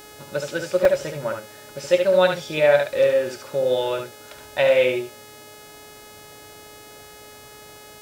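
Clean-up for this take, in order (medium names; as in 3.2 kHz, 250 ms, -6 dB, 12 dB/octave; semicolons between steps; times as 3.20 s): de-hum 422.1 Hz, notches 38; interpolate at 0.85 s, 2.9 ms; inverse comb 71 ms -5.5 dB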